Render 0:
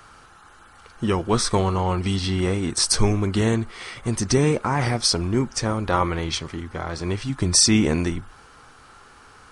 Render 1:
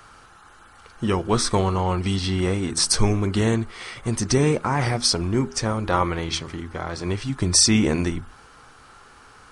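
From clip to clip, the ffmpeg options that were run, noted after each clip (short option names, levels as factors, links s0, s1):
-af "bandreject=f=80.94:t=h:w=4,bandreject=f=161.88:t=h:w=4,bandreject=f=242.82:t=h:w=4,bandreject=f=323.76:t=h:w=4,bandreject=f=404.7:t=h:w=4"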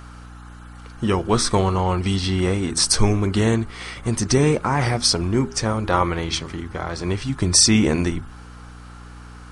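-af "aeval=exprs='val(0)+0.00891*(sin(2*PI*60*n/s)+sin(2*PI*2*60*n/s)/2+sin(2*PI*3*60*n/s)/3+sin(2*PI*4*60*n/s)/4+sin(2*PI*5*60*n/s)/5)':c=same,volume=1.26"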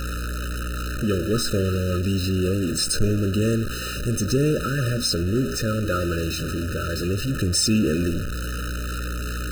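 -af "aeval=exprs='val(0)+0.5*0.158*sgn(val(0))':c=same,afftfilt=real='re*eq(mod(floor(b*sr/1024/610),2),0)':imag='im*eq(mod(floor(b*sr/1024/610),2),0)':win_size=1024:overlap=0.75,volume=0.501"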